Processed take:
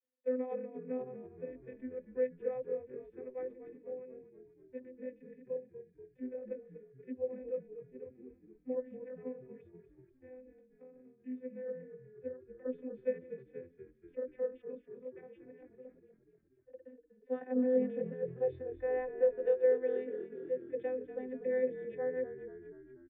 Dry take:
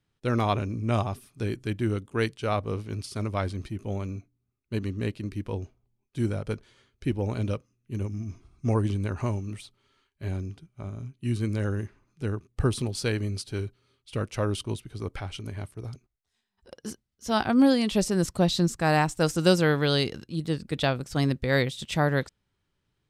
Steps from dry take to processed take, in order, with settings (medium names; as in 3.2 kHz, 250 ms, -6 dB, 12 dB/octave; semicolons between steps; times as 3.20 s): vocoder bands 32, saw 254 Hz; cascade formant filter e; frequency-shifting echo 241 ms, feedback 60%, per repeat -41 Hz, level -11.5 dB